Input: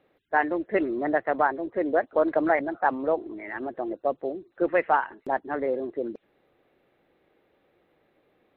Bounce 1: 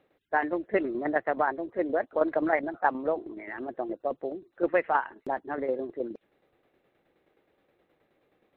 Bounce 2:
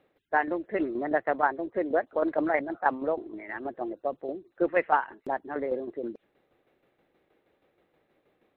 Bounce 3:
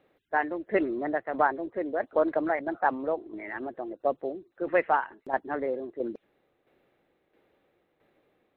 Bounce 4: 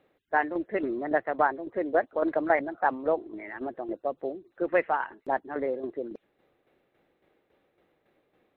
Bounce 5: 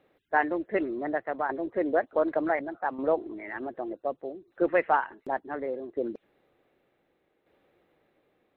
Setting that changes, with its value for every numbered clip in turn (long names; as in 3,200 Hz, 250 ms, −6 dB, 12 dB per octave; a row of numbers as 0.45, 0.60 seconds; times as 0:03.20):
shaped tremolo, speed: 9.5, 6.3, 1.5, 3.6, 0.67 Hertz